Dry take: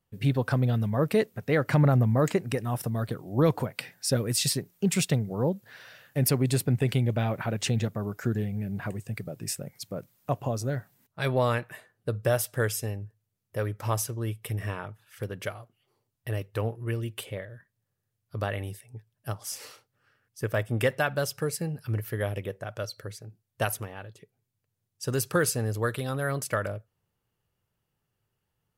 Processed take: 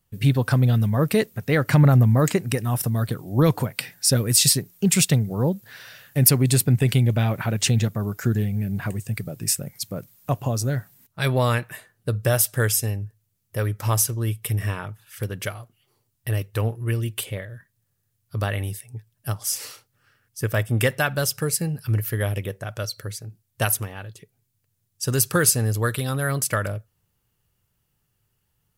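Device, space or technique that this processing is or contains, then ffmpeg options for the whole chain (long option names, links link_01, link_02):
smiley-face EQ: -af "lowshelf=frequency=92:gain=6.5,equalizer=frequency=560:width_type=o:width=1.6:gain=-3.5,highshelf=frequency=5200:gain=8,volume=5dB"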